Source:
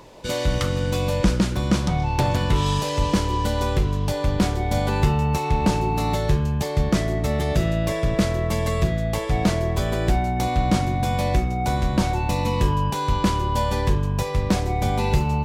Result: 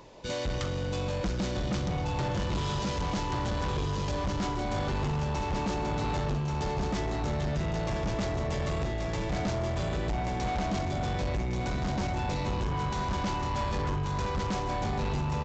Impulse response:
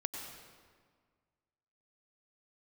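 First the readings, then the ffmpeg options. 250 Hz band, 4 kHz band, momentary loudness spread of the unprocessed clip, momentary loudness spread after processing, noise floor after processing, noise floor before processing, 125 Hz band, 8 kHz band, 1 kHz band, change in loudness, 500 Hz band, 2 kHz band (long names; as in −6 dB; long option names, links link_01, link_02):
−9.5 dB, −8.0 dB, 2 LU, 1 LU, −32 dBFS, −26 dBFS, −9.0 dB, −9.5 dB, −8.0 dB, −9.0 dB, −8.0 dB, −7.0 dB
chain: -af "aecho=1:1:1133|2266|3399|4532|5665:0.631|0.259|0.106|0.0435|0.0178,aresample=16000,asoftclip=type=tanh:threshold=-21dB,aresample=44100,volume=-5.5dB"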